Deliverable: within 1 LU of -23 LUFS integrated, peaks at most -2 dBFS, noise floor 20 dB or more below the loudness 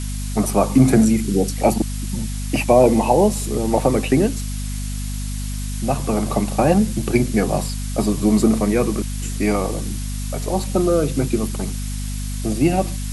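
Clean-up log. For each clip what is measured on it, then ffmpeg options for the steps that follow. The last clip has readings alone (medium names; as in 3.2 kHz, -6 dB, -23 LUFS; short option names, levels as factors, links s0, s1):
hum 50 Hz; highest harmonic 250 Hz; hum level -23 dBFS; noise floor -26 dBFS; noise floor target -40 dBFS; loudness -20.0 LUFS; peak level -2.0 dBFS; loudness target -23.0 LUFS
-> -af "bandreject=f=50:t=h:w=6,bandreject=f=100:t=h:w=6,bandreject=f=150:t=h:w=6,bandreject=f=200:t=h:w=6,bandreject=f=250:t=h:w=6"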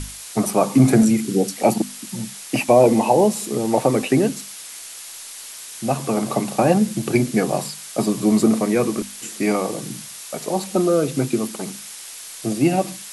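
hum not found; noise floor -37 dBFS; noise floor target -40 dBFS
-> -af "afftdn=nr=6:nf=-37"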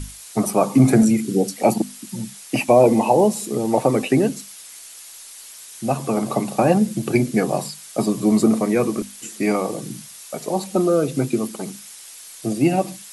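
noise floor -41 dBFS; loudness -19.5 LUFS; peak level -2.5 dBFS; loudness target -23.0 LUFS
-> -af "volume=0.668"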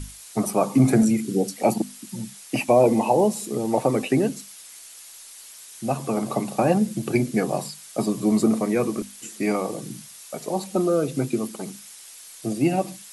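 loudness -23.0 LUFS; peak level -6.0 dBFS; noise floor -44 dBFS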